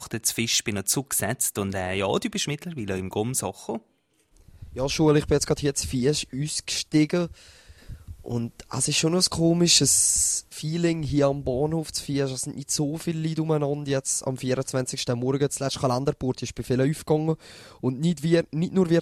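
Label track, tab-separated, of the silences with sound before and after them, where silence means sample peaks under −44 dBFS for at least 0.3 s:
3.790000	4.370000	silence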